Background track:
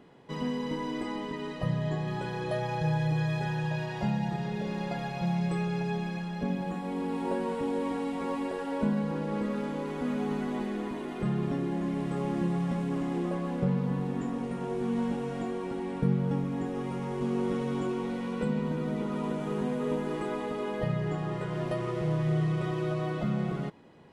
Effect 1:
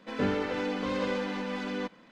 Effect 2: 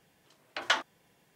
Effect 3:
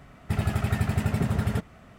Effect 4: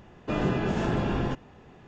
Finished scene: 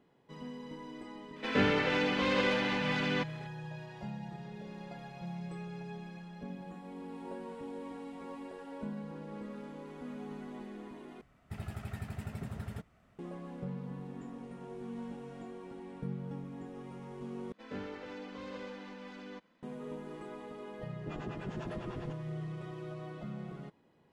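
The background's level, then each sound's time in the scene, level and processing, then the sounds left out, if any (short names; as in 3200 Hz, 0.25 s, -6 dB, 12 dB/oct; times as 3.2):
background track -12.5 dB
1.36 add 1 -0.5 dB + bell 2600 Hz +8 dB 1.6 oct
11.21 replace with 3 -15.5 dB
17.52 replace with 1 -13.5 dB
20.78 add 4 -11 dB + harmonic tremolo 10 Hz, depth 100%, crossover 550 Hz
not used: 2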